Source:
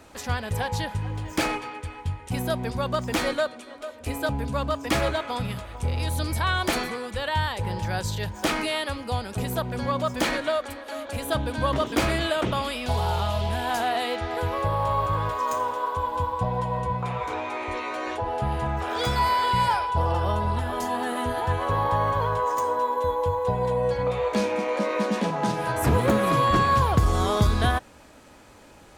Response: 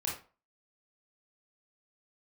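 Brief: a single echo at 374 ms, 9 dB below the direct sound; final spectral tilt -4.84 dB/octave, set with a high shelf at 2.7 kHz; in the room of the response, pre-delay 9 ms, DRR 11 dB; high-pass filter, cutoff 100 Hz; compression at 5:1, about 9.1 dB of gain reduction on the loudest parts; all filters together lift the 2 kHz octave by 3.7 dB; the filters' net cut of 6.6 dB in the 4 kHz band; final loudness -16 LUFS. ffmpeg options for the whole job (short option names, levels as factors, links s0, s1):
-filter_complex "[0:a]highpass=100,equalizer=f=2000:t=o:g=9,highshelf=f=2700:g=-7,equalizer=f=4000:t=o:g=-7,acompressor=threshold=0.0447:ratio=5,aecho=1:1:374:0.355,asplit=2[s0][s1];[1:a]atrim=start_sample=2205,adelay=9[s2];[s1][s2]afir=irnorm=-1:irlink=0,volume=0.188[s3];[s0][s3]amix=inputs=2:normalize=0,volume=5.01"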